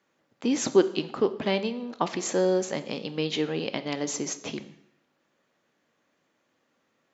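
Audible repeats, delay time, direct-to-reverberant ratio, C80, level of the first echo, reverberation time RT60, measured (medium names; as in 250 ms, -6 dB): no echo, no echo, 11.0 dB, 17.0 dB, no echo, 0.75 s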